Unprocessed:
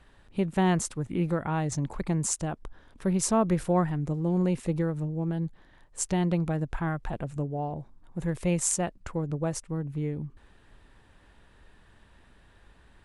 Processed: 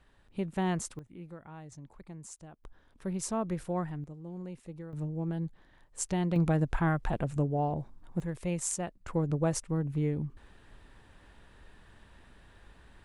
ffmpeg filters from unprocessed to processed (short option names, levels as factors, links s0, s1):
-af "asetnsamples=n=441:p=0,asendcmd='0.99 volume volume -18.5dB;2.64 volume volume -8.5dB;4.04 volume volume -16dB;4.93 volume volume -4dB;6.36 volume volume 2dB;8.2 volume volume -6.5dB;9.08 volume volume 1dB',volume=0.473"